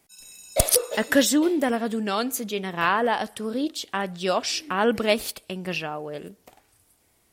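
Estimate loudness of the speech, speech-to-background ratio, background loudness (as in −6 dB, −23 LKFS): −24.5 LKFS, 19.5 dB, −44.0 LKFS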